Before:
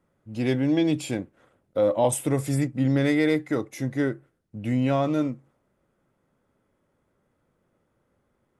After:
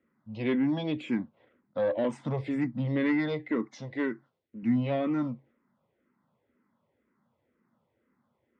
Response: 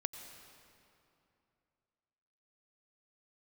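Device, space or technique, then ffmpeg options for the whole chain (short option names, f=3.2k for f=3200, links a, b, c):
barber-pole phaser into a guitar amplifier: -filter_complex "[0:a]asplit=2[a][b];[b]afreqshift=-2[c];[a][c]amix=inputs=2:normalize=1,asoftclip=type=tanh:threshold=-19dB,highpass=96,equalizer=f=230:t=q:w=4:g=9,equalizer=f=1k:t=q:w=4:g=6,equalizer=f=2k:t=q:w=4:g=5,lowpass=f=4.3k:w=0.5412,lowpass=f=4.3k:w=1.3066,asettb=1/sr,asplit=3[d][e][f];[d]atrim=end=3.674[g];[e]atrim=start=3.67:end=4.63,asetpts=PTS-STARTPTS,afade=t=in:d=0.004:c=qsin,afade=t=out:st=0.956:d=0.004:c=qsin,bass=f=250:g=-7,treble=f=4k:g=8[h];[f]atrim=start=4.626[i];[g][h]acrossfade=d=0.004:c1=hsin:c2=qsin[j];[j][i]acrossfade=d=0.004:c1=qsin:c2=hsin,volume=-2.5dB"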